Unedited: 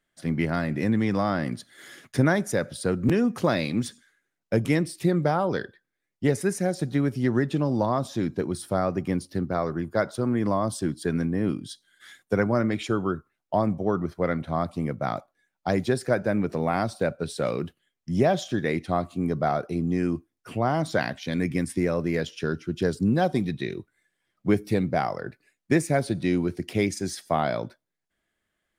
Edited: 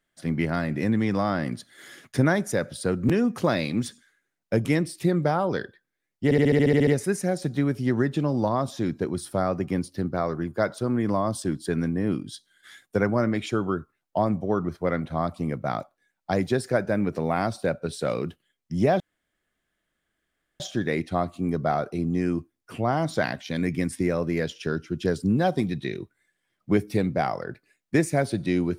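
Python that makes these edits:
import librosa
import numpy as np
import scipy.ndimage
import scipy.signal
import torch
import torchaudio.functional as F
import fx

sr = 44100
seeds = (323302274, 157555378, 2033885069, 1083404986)

y = fx.edit(x, sr, fx.stutter(start_s=6.24, slice_s=0.07, count=10),
    fx.insert_room_tone(at_s=18.37, length_s=1.6), tone=tone)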